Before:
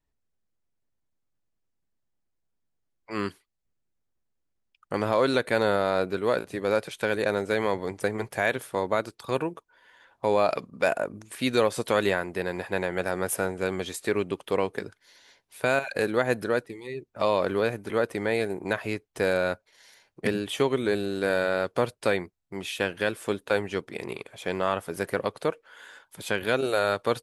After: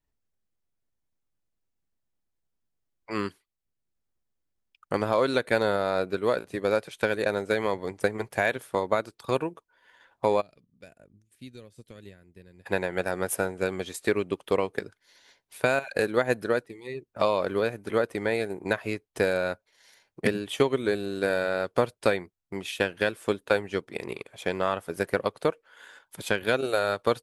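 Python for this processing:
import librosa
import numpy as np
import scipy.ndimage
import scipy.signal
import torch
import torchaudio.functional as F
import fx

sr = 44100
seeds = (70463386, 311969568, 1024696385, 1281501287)

y = fx.tone_stack(x, sr, knobs='10-0-1', at=(10.4, 12.65), fade=0.02)
y = fx.transient(y, sr, attack_db=5, sustain_db=-3)
y = y * 10.0 ** (-2.0 / 20.0)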